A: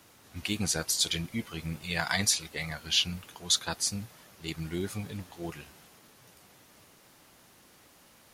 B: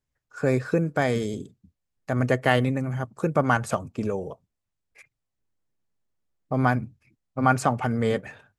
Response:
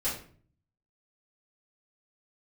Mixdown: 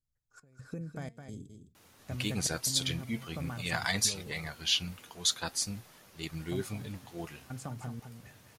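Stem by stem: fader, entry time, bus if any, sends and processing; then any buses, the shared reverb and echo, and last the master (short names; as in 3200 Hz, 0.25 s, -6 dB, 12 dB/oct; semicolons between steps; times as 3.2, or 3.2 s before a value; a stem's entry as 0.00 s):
+2.0 dB, 1.75 s, no send, no echo send, dry
-12.0 dB, 0.00 s, no send, echo send -8.5 dB, tone controls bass +13 dB, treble +10 dB; compressor 6:1, threshold -20 dBFS, peak gain reduction 10 dB; step gate "xxxx..xxxxx..x" 152 bpm -24 dB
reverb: off
echo: echo 0.211 s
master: flange 0.48 Hz, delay 1.5 ms, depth 3.1 ms, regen +86%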